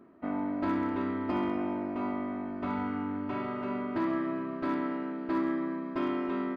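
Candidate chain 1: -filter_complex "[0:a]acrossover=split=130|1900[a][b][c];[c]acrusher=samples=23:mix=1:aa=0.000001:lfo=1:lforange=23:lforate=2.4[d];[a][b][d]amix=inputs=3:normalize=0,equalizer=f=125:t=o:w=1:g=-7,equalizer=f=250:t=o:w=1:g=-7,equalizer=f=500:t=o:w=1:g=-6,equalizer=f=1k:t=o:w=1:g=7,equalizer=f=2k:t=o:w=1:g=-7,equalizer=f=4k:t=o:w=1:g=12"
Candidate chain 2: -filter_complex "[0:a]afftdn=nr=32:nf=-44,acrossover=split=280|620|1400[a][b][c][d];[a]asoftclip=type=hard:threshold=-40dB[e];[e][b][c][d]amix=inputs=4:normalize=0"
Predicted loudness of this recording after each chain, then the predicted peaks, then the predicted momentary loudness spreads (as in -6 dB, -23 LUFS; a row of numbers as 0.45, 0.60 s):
-36.5, -34.0 LUFS; -21.5, -22.0 dBFS; 4, 4 LU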